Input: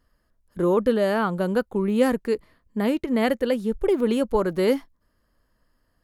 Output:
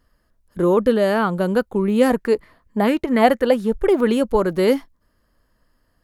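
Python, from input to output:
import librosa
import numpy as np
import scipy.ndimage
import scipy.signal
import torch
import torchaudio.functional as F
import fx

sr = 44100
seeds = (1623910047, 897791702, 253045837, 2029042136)

y = fx.bell_lfo(x, sr, hz=4.3, low_hz=680.0, high_hz=1900.0, db=10, at=(2.1, 4.1))
y = F.gain(torch.from_numpy(y), 4.0).numpy()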